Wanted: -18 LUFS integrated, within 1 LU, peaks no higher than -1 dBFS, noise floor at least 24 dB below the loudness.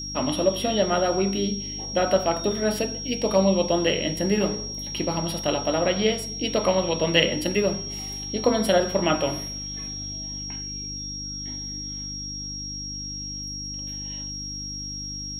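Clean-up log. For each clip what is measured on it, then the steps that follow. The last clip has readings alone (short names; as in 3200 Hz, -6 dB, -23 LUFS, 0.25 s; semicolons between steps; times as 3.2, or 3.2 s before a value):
hum 50 Hz; harmonics up to 300 Hz; hum level -36 dBFS; steady tone 5600 Hz; tone level -32 dBFS; loudness -25.5 LUFS; peak -3.5 dBFS; loudness target -18.0 LUFS
-> de-hum 50 Hz, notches 6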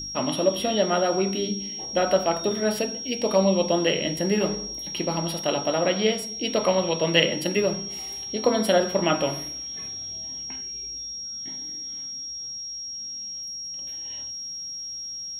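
hum none; steady tone 5600 Hz; tone level -32 dBFS
-> notch 5600 Hz, Q 30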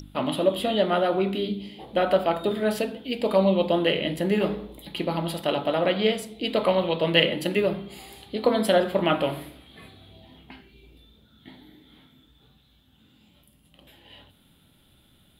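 steady tone none; loudness -24.5 LUFS; peak -3.5 dBFS; loudness target -18.0 LUFS
-> gain +6.5 dB; limiter -1 dBFS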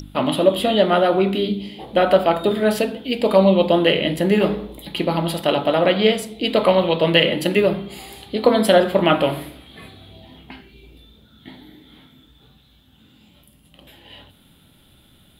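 loudness -18.0 LUFS; peak -1.0 dBFS; noise floor -54 dBFS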